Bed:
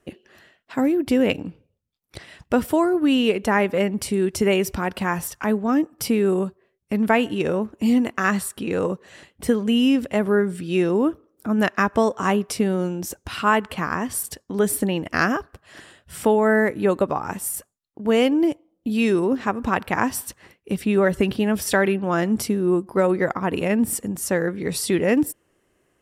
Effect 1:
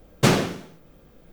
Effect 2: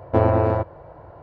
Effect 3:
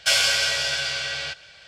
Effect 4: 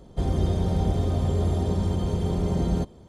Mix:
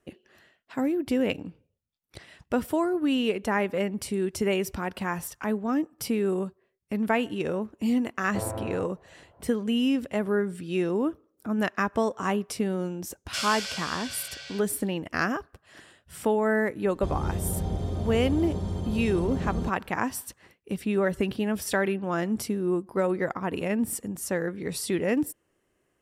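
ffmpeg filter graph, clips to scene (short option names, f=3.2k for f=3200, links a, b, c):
-filter_complex "[0:a]volume=-6.5dB[a];[3:a]highshelf=f=4.1k:g=5.5[b];[2:a]atrim=end=1.22,asetpts=PTS-STARTPTS,volume=-15.5dB,afade=t=in:d=0.004:c=hsin,afade=t=out:st=1.216:d=0.004:c=hsin,adelay=8210[c];[b]atrim=end=1.67,asetpts=PTS-STARTPTS,volume=-15dB,afade=t=in:d=0.004:c=hsin,afade=t=out:st=1.666:d=0.004:c=hsin,adelay=13270[d];[4:a]atrim=end=3.08,asetpts=PTS-STARTPTS,volume=-6dB,afade=t=in:d=0.004:c=hsin,afade=t=out:st=3.076:d=0.004:c=hsin,adelay=16850[e];[a][c][d][e]amix=inputs=4:normalize=0"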